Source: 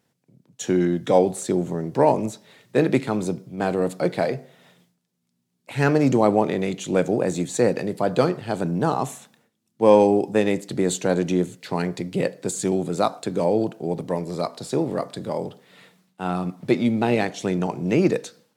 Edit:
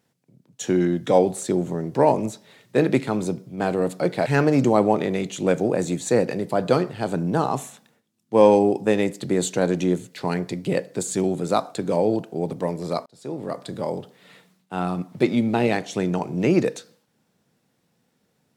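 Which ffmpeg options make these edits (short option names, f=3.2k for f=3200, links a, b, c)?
-filter_complex "[0:a]asplit=3[a][b][c];[a]atrim=end=4.262[d];[b]atrim=start=5.738:end=14.54,asetpts=PTS-STARTPTS,afade=t=out:st=8.798:d=0.004:c=hsin[e];[c]atrim=start=14.54,asetpts=PTS-STARTPTS,afade=t=in:d=0.67[f];[e][f]concat=n=2:v=0:a=1[g];[d][g]acrossfade=d=0.004:c1=hsin:c2=hsin"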